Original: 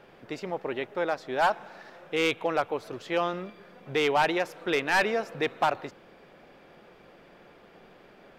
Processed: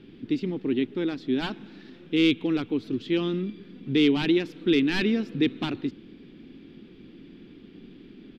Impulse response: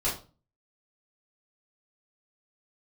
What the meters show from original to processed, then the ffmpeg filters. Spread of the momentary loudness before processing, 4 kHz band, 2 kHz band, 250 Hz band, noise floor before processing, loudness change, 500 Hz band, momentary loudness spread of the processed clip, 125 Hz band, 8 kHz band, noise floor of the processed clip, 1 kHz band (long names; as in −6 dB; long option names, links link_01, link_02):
14 LU, +3.5 dB, −4.0 dB, +12.5 dB, −55 dBFS, +2.5 dB, −1.0 dB, 11 LU, +9.0 dB, can't be measured, −50 dBFS, −13.5 dB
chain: -af "firequalizer=gain_entry='entry(160,0);entry(270,9);entry(580,-25);entry(2300,-10);entry(3400,-3);entry(6400,-17);entry(10000,-20)':delay=0.05:min_phase=1,volume=8.5dB"